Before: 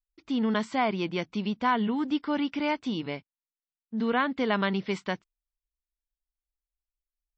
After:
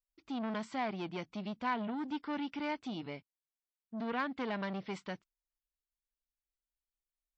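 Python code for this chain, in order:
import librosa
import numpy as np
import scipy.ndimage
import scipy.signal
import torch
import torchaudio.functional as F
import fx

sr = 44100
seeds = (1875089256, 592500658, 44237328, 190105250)

y = fx.transformer_sat(x, sr, knee_hz=1100.0)
y = y * 10.0 ** (-7.5 / 20.0)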